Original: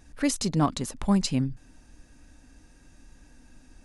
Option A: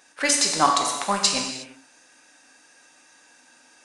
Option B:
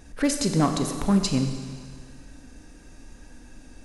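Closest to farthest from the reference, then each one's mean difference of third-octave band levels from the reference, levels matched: B, A; 6.0, 9.0 decibels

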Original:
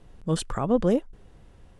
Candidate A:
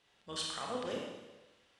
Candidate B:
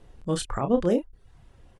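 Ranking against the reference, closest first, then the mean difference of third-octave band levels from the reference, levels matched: B, A; 2.5, 11.5 decibels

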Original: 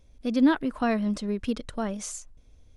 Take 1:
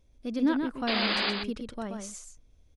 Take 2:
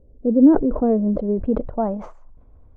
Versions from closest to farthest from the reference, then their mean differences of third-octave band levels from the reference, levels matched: 1, 2; 6.5, 8.5 decibels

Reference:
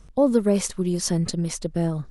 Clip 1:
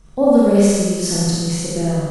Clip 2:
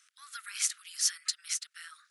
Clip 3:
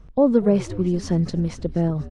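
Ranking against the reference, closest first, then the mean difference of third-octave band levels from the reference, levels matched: 3, 1, 2; 5.0, 9.0, 18.5 decibels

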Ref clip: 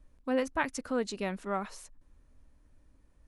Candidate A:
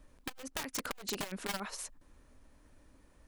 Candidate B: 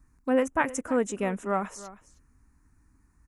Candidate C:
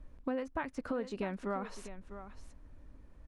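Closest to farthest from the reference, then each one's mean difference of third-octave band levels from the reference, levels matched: B, C, A; 2.5, 5.0, 13.5 decibels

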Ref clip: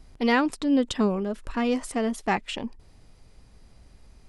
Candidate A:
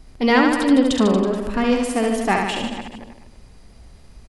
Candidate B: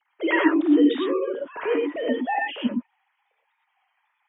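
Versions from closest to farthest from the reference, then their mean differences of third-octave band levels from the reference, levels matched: A, B; 7.0, 10.5 decibels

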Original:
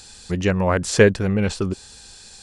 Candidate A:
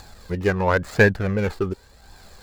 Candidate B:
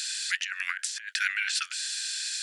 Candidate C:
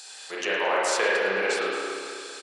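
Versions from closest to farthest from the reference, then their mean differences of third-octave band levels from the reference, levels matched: A, C, B; 5.0, 13.0, 19.5 decibels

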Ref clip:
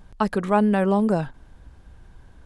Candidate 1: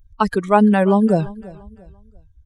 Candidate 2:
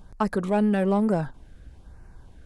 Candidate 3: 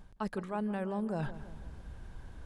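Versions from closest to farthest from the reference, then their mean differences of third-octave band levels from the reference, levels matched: 2, 1, 3; 1.5, 4.0, 6.5 decibels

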